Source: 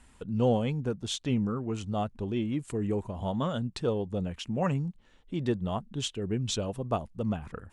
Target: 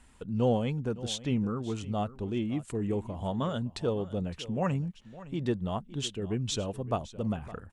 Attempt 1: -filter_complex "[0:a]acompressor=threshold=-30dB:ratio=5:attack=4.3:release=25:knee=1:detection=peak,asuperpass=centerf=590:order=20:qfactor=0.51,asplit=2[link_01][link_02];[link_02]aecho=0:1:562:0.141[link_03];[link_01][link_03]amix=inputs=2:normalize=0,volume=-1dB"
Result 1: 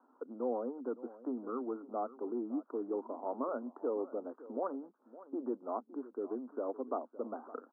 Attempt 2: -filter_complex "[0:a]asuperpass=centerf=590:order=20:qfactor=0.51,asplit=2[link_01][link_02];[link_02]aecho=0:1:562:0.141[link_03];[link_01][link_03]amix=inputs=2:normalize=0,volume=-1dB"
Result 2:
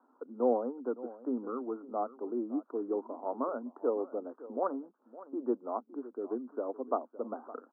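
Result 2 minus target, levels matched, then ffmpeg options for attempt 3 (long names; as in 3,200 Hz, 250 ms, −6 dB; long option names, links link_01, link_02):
500 Hz band +3.5 dB
-filter_complex "[0:a]asplit=2[link_01][link_02];[link_02]aecho=0:1:562:0.141[link_03];[link_01][link_03]amix=inputs=2:normalize=0,volume=-1dB"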